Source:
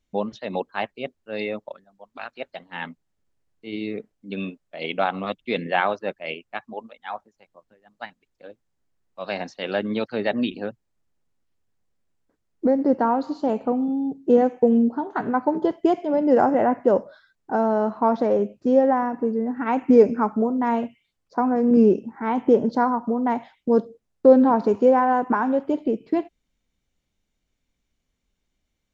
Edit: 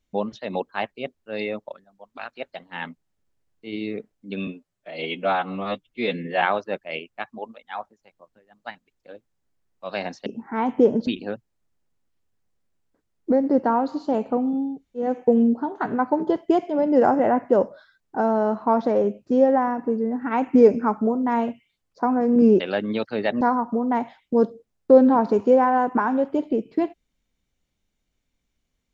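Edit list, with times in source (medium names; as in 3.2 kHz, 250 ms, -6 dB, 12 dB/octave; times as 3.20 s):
4.47–5.77 s: stretch 1.5×
9.61–10.42 s: swap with 21.95–22.76 s
14.08–14.41 s: room tone, crossfade 0.24 s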